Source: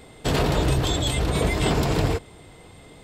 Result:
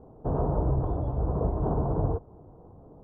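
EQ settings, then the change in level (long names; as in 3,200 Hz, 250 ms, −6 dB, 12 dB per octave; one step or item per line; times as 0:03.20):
inverse Chebyshev low-pass filter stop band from 2,000 Hz, stop band 40 dB
dynamic equaliser 270 Hz, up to −4 dB, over −34 dBFS, Q 0.74
high-frequency loss of the air 210 metres
−2.5 dB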